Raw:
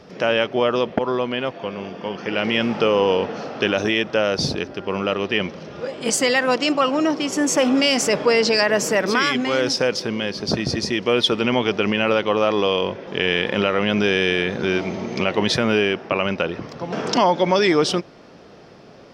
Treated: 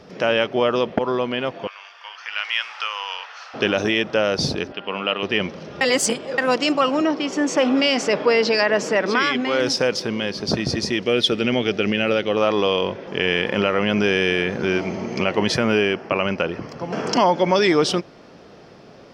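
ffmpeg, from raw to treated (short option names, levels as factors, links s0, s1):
-filter_complex "[0:a]asettb=1/sr,asplit=3[s0][s1][s2];[s0]atrim=end=1.674[s3];[s1]atrim=start=1.67:end=3.54,asetpts=PTS-STARTPTS,afade=t=in:d=0.004:c=qsin,afade=t=out:st=1.866:d=0.004:c=qsin,highpass=f=1100:w=0.5412,highpass=f=1100:w=1.3066[s4];[s2]atrim=start=3.536[s5];[s3][s4]acrossfade=d=0.004:c1=hsin:c2=qsin[s6];[s6][s5]acrossfade=d=0.004:c1=qsin:c2=hsin,asettb=1/sr,asplit=3[s7][s8][s9];[s7]atrim=end=4.724[s10];[s8]atrim=start=4.72:end=5.23,asetpts=PTS-STARTPTS,afade=t=in:d=0.004:c=qsin,afade=t=out:st=0.506:d=0.004:c=qsin,highpass=250,equalizer=f=360:t=q:w=4:g=-9,equalizer=f=530:t=q:w=4:g=-3,equalizer=f=2900:t=q:w=4:g=8,lowpass=f=4100:w=0.5412,lowpass=f=4100:w=1.3066[s11];[s9]atrim=start=5.226[s12];[s10][s11]acrossfade=d=0.004:c1=hsin:c2=qsin[s13];[s13][s12]acrossfade=d=0.004:c1=qsin:c2=hsin,asettb=1/sr,asplit=3[s14][s15][s16];[s14]atrim=end=7.014[s17];[s15]atrim=start=7.01:end=9.6,asetpts=PTS-STARTPTS,afade=t=in:d=0.004:c=qsin,afade=t=out:st=2.586:d=0.004:c=qsin,highpass=180,lowpass=4600[s18];[s16]atrim=start=9.596[s19];[s17][s18]acrossfade=d=0.004:c1=hsin:c2=qsin[s20];[s20][s19]acrossfade=d=0.004:c1=qsin:c2=hsin,asettb=1/sr,asplit=3[s21][s22][s23];[s21]atrim=end=11.034[s24];[s22]atrim=start=11.03:end=12.37,asetpts=PTS-STARTPTS,afade=t=in:d=0.004:c=qsin,afade=t=out:st=1.336:d=0.004:c=qsin,equalizer=f=1000:w=2.7:g=-12.5[s25];[s23]atrim=start=12.366[s26];[s24][s25]acrossfade=d=0.004:c1=hsin:c2=qsin[s27];[s27][s26]acrossfade=d=0.004:c1=qsin:c2=hsin,asettb=1/sr,asplit=3[s28][s29][s30];[s28]atrim=end=13.084[s31];[s29]atrim=start=13.08:end=17.55,asetpts=PTS-STARTPTS,afade=t=in:d=0.004:c=qsin,afade=t=out:st=4.466:d=0.004:c=qsin,bandreject=f=3700:w=5[s32];[s30]atrim=start=17.546[s33];[s31][s32]acrossfade=d=0.004:c1=hsin:c2=qsin[s34];[s34][s33]acrossfade=d=0.004:c1=qsin:c2=hsin,asplit=3[s35][s36][s37];[s35]atrim=end=5.812[s38];[s36]atrim=start=5.808:end=6.382,asetpts=PTS-STARTPTS,areverse[s39];[s37]atrim=start=6.378[s40];[s38][s39]acrossfade=d=0.004:c1=hsin:c2=hsin[s41];[s41][s40]acrossfade=d=0.004:c1=hsin:c2=hsin"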